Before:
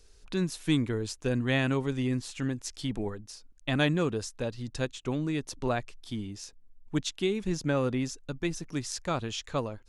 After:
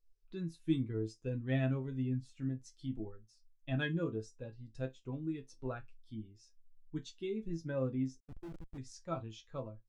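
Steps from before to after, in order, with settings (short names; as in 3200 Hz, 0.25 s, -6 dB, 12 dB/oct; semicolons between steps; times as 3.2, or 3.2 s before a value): resonator bank A2 minor, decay 0.21 s; 8.2–8.78 Schmitt trigger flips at -46 dBFS; spectral expander 1.5:1; gain +3.5 dB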